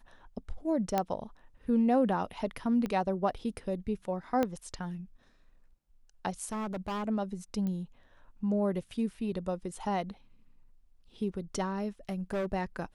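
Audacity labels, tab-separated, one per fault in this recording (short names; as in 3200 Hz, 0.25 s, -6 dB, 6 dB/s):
0.980000	0.980000	pop -15 dBFS
2.860000	2.860000	pop -22 dBFS
4.430000	4.430000	pop -16 dBFS
6.520000	7.040000	clipped -32 dBFS
7.670000	7.670000	pop -25 dBFS
12.090000	12.460000	clipped -28.5 dBFS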